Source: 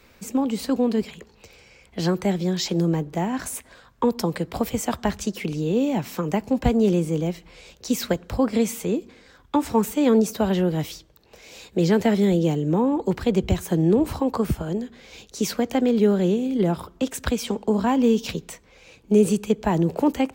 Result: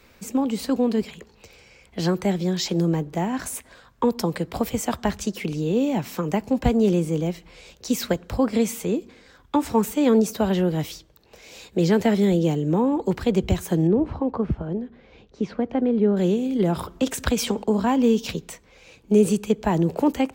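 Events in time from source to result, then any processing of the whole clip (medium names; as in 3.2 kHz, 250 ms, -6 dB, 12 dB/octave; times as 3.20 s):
13.87–16.17 s: tape spacing loss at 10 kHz 39 dB
16.72–17.64 s: transient shaper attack +2 dB, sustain +6 dB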